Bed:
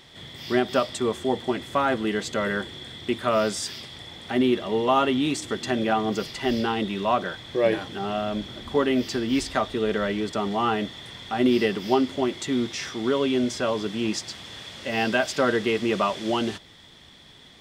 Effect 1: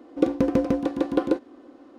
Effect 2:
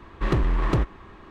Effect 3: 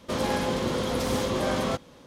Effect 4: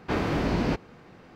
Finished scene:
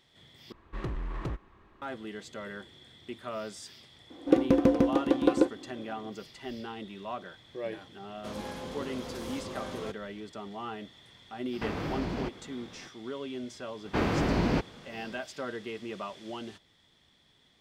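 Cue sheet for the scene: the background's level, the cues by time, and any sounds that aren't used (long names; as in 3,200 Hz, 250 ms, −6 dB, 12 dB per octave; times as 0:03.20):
bed −15 dB
0:00.52: overwrite with 2 −13 dB
0:04.10: mix in 1 −1 dB
0:08.15: mix in 3 −13 dB
0:11.53: mix in 4 −0.5 dB + downward compressor 2.5 to 1, threshold −33 dBFS
0:13.85: mix in 4 −1 dB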